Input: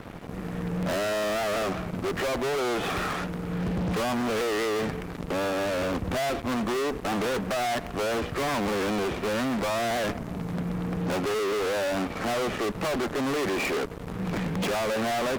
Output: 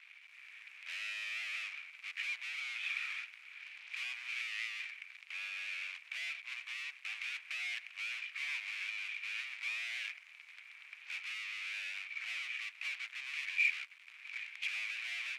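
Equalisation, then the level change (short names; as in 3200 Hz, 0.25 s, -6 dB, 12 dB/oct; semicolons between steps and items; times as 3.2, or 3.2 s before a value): ladder high-pass 2200 Hz, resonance 75%; air absorption 52 m; 0.0 dB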